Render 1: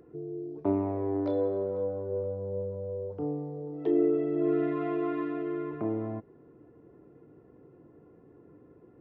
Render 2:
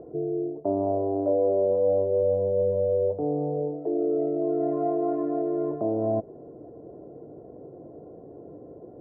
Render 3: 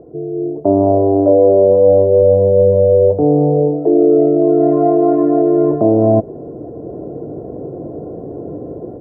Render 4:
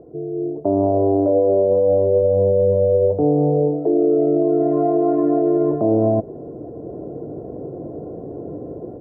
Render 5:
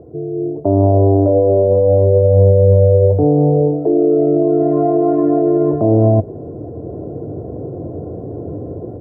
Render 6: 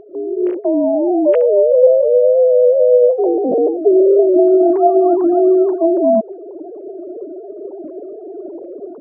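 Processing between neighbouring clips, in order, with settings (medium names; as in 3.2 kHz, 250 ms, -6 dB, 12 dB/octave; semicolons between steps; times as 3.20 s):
reverse; compression 6:1, threshold -35 dBFS, peak gain reduction 13.5 dB; reverse; resonant low-pass 640 Hz, resonance Q 4.9; trim +7.5 dB
bass shelf 370 Hz +6 dB; level rider gain up to 13 dB; trim +1 dB
peak limiter -5 dBFS, peak gain reduction 4 dB; trim -4 dB
peaking EQ 91 Hz +12 dB 0.91 oct; trim +3 dB
formants replaced by sine waves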